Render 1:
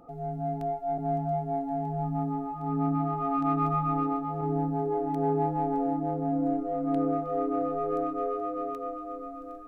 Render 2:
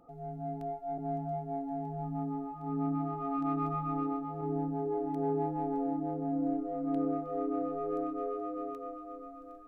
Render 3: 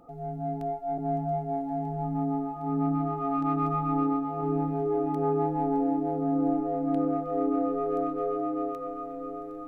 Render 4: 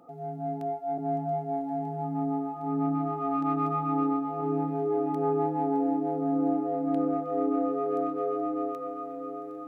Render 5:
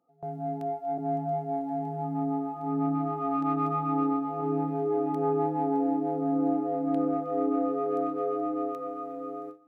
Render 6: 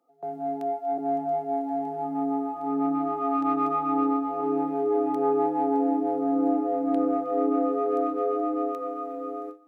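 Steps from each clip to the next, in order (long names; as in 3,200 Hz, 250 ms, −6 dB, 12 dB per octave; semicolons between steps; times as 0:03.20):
dynamic equaliser 340 Hz, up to +6 dB, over −42 dBFS, Q 2; level −7.5 dB
feedback delay with all-pass diffusion 1,087 ms, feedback 44%, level −11.5 dB; level +6 dB
high-pass filter 160 Hz 12 dB per octave
noise gate with hold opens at −29 dBFS
high-pass filter 240 Hz 24 dB per octave; level +3.5 dB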